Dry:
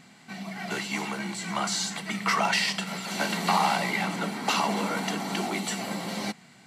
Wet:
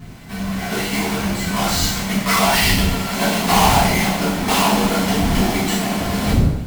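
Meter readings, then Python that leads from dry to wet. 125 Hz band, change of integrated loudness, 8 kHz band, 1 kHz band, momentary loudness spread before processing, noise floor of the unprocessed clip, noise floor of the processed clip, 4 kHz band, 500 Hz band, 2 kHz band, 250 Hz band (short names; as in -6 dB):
+17.0 dB, +10.5 dB, +10.5 dB, +8.5 dB, 9 LU, -54 dBFS, -30 dBFS, +9.5 dB, +11.5 dB, +8.0 dB, +13.0 dB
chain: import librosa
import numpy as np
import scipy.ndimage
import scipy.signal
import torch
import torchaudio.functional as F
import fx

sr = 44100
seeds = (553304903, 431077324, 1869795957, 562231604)

y = fx.halfwave_hold(x, sr)
y = fx.dmg_wind(y, sr, seeds[0], corner_hz=180.0, level_db=-33.0)
y = fx.dynamic_eq(y, sr, hz=1500.0, q=1.6, threshold_db=-34.0, ratio=4.0, max_db=-4)
y = fx.rev_double_slope(y, sr, seeds[1], early_s=0.67, late_s=1.7, knee_db=-18, drr_db=-9.0)
y = y * 10.0 ** (-3.0 / 20.0)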